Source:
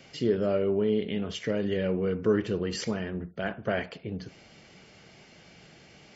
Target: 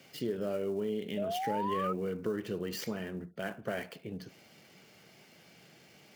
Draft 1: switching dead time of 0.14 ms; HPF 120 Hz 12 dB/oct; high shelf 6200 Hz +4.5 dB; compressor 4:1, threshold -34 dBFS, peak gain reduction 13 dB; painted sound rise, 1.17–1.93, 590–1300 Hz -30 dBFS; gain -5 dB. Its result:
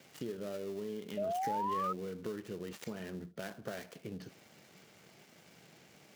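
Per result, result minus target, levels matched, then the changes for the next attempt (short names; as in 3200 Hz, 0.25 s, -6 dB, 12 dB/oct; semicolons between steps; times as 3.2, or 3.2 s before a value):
compressor: peak gain reduction +7 dB; switching dead time: distortion +9 dB
change: compressor 4:1, threshold -25 dBFS, peak gain reduction 6.5 dB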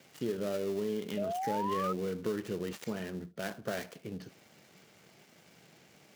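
switching dead time: distortion +9 dB
change: switching dead time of 0.036 ms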